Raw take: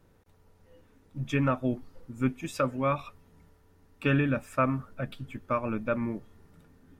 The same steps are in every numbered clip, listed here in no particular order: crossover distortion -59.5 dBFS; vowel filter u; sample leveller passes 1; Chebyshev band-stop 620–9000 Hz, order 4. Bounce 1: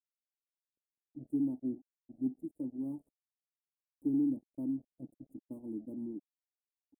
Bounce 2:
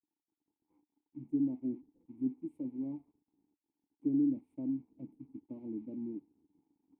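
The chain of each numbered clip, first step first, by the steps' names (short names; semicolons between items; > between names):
vowel filter > sample leveller > crossover distortion > Chebyshev band-stop; sample leveller > Chebyshev band-stop > crossover distortion > vowel filter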